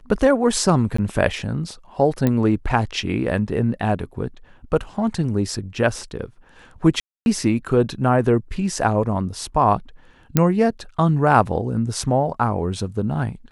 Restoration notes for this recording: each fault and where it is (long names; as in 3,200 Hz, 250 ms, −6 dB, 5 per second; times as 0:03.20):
0:00.97–0:00.98: drop-out 14 ms
0:02.27: click −8 dBFS
0:07.00–0:07.26: drop-out 261 ms
0:10.37: click −2 dBFS